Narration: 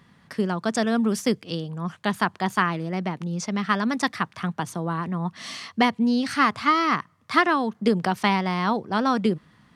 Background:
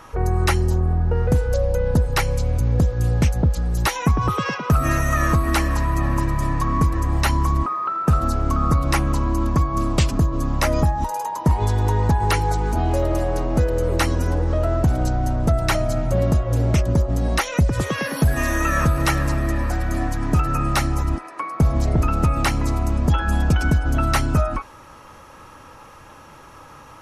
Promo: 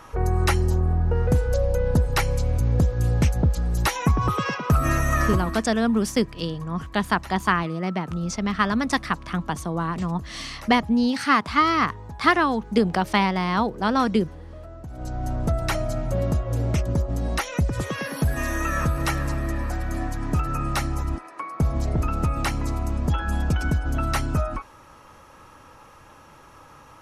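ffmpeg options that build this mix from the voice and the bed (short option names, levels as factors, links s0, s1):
-filter_complex "[0:a]adelay=4900,volume=1.12[s0];[1:a]volume=4.73,afade=t=out:st=5.22:d=0.41:silence=0.11885,afade=t=in:st=14.89:d=0.45:silence=0.16788[s1];[s0][s1]amix=inputs=2:normalize=0"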